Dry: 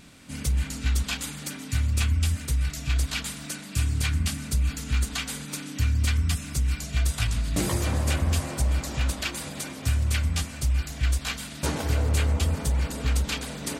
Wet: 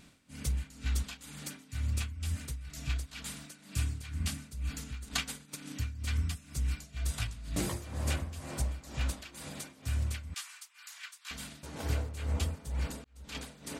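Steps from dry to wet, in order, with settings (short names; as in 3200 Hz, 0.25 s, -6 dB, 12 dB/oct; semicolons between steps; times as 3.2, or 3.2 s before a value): 5.07–5.73 transient shaper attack +10 dB, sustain -5 dB; 10.34–11.31 steep high-pass 1000 Hz 36 dB/oct; 12.85–13.35 auto swell 0.761 s; tremolo 2.1 Hz, depth 79%; gain -6.5 dB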